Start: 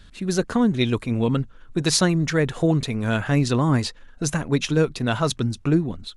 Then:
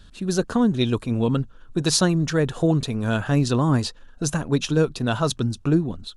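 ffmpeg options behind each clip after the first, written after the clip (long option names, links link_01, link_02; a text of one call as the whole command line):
ffmpeg -i in.wav -af "equalizer=frequency=2100:width_type=o:width=0.37:gain=-10" out.wav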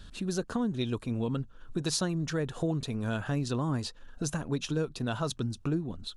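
ffmpeg -i in.wav -af "acompressor=threshold=-36dB:ratio=2" out.wav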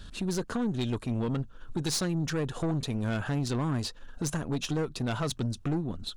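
ffmpeg -i in.wav -af "aeval=exprs='(tanh(28.2*val(0)+0.35)-tanh(0.35))/28.2':channel_layout=same,volume=4.5dB" out.wav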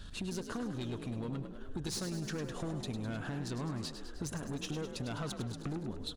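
ffmpeg -i in.wav -filter_complex "[0:a]acompressor=threshold=-34dB:ratio=4,asplit=2[link_01][link_02];[link_02]asplit=8[link_03][link_04][link_05][link_06][link_07][link_08][link_09][link_10];[link_03]adelay=103,afreqshift=42,volume=-9dB[link_11];[link_04]adelay=206,afreqshift=84,volume=-13dB[link_12];[link_05]adelay=309,afreqshift=126,volume=-17dB[link_13];[link_06]adelay=412,afreqshift=168,volume=-21dB[link_14];[link_07]adelay=515,afreqshift=210,volume=-25.1dB[link_15];[link_08]adelay=618,afreqshift=252,volume=-29.1dB[link_16];[link_09]adelay=721,afreqshift=294,volume=-33.1dB[link_17];[link_10]adelay=824,afreqshift=336,volume=-37.1dB[link_18];[link_11][link_12][link_13][link_14][link_15][link_16][link_17][link_18]amix=inputs=8:normalize=0[link_19];[link_01][link_19]amix=inputs=2:normalize=0,volume=-2.5dB" out.wav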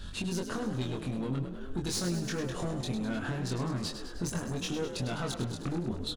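ffmpeg -i in.wav -filter_complex "[0:a]asplit=2[link_01][link_02];[link_02]adelay=23,volume=-2.5dB[link_03];[link_01][link_03]amix=inputs=2:normalize=0,volume=3.5dB" out.wav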